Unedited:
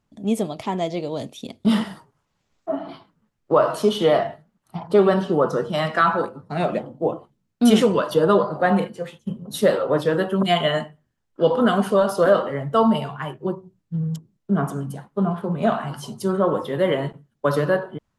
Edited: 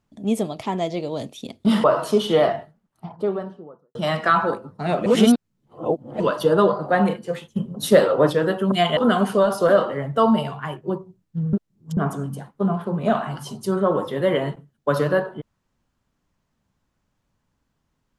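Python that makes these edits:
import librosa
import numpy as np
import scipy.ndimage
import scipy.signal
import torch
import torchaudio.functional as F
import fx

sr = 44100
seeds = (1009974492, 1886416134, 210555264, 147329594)

y = fx.studio_fade_out(x, sr, start_s=4.12, length_s=1.54)
y = fx.edit(y, sr, fx.cut(start_s=1.84, length_s=1.71),
    fx.reverse_span(start_s=6.77, length_s=1.14),
    fx.clip_gain(start_s=8.99, length_s=1.05, db=3.5),
    fx.cut(start_s=10.68, length_s=0.86),
    fx.reverse_span(start_s=14.1, length_s=0.44), tone=tone)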